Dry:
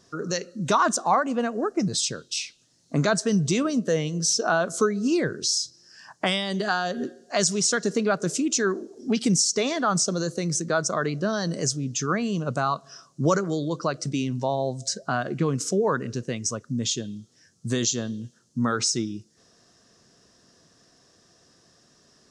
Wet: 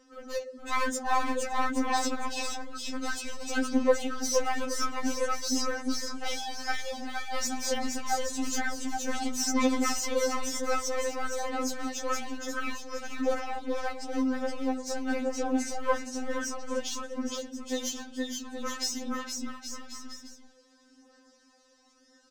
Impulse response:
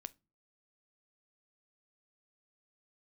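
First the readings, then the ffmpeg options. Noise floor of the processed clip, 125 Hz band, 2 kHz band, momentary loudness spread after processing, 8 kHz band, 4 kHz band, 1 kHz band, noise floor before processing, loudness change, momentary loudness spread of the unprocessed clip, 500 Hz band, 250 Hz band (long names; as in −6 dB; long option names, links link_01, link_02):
−62 dBFS, below −20 dB, −4.5 dB, 8 LU, −7.5 dB, −6.5 dB, −4.0 dB, −62 dBFS, −6.5 dB, 8 LU, −5.5 dB, −6.0 dB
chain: -filter_complex "[0:a]highshelf=frequency=2800:gain=-8.5,bandreject=frequency=50:width_type=h:width=6,bandreject=frequency=100:width_type=h:width=6,bandreject=frequency=150:width_type=h:width=6,bandreject=frequency=200:width_type=h:width=6,bandreject=frequency=250:width_type=h:width=6,bandreject=frequency=300:width_type=h:width=6,bandreject=frequency=350:width_type=h:width=6,bandreject=frequency=400:width_type=h:width=6,bandreject=frequency=450:width_type=h:width=6,aeval=exprs='clip(val(0),-1,0.0355)':channel_layout=same,aecho=1:1:470|822.5|1087|1285|1434:0.631|0.398|0.251|0.158|0.1,acrossover=split=280|3000[link_01][link_02][link_03];[link_01]acompressor=threshold=-44dB:ratio=3[link_04];[link_04][link_02][link_03]amix=inputs=3:normalize=0,aphaser=in_gain=1:out_gain=1:delay=3.3:decay=0.47:speed=0.52:type=sinusoidal,afftfilt=real='re*3.46*eq(mod(b,12),0)':imag='im*3.46*eq(mod(b,12),0)':win_size=2048:overlap=0.75"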